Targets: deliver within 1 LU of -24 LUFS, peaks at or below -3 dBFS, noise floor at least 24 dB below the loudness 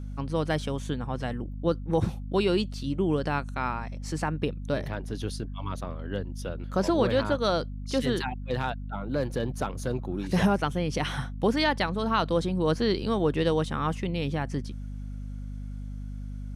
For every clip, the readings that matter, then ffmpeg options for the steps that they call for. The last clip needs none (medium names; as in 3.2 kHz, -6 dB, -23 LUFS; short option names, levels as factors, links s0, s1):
hum 50 Hz; highest harmonic 250 Hz; hum level -34 dBFS; loudness -28.5 LUFS; peak level -11.5 dBFS; loudness target -24.0 LUFS
-> -af "bandreject=f=50:t=h:w=4,bandreject=f=100:t=h:w=4,bandreject=f=150:t=h:w=4,bandreject=f=200:t=h:w=4,bandreject=f=250:t=h:w=4"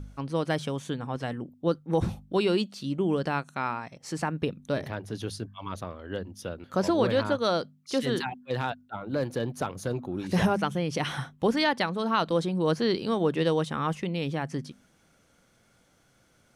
hum not found; loudness -29.5 LUFS; peak level -12.0 dBFS; loudness target -24.0 LUFS
-> -af "volume=1.88"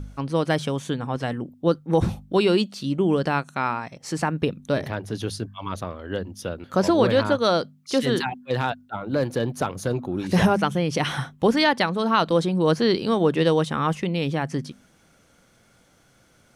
loudness -24.0 LUFS; peak level -6.5 dBFS; noise floor -59 dBFS